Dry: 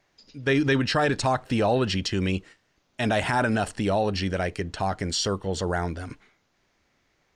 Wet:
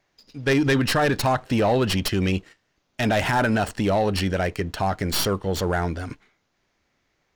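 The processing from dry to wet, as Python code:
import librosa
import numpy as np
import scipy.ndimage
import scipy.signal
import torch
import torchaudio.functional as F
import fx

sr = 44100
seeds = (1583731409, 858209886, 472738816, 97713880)

y = fx.tracing_dist(x, sr, depth_ms=0.09)
y = fx.peak_eq(y, sr, hz=8900.0, db=-3.0, octaves=0.28)
y = fx.leveller(y, sr, passes=1)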